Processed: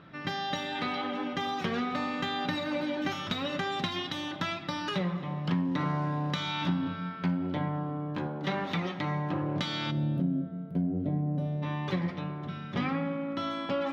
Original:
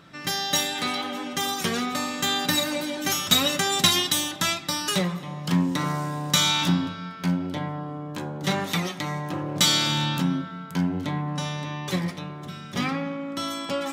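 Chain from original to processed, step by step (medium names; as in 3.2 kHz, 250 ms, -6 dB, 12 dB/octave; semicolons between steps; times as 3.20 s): 8.27–8.71 s: peaking EQ 69 Hz -12.5 dB 1.9 oct; 9.91–11.63 s: time-frequency box 740–9000 Hz -19 dB; compression 5:1, threshold -25 dBFS, peak gain reduction 10.5 dB; distance through air 300 m; reverberation RT60 0.50 s, pre-delay 51 ms, DRR 17.5 dB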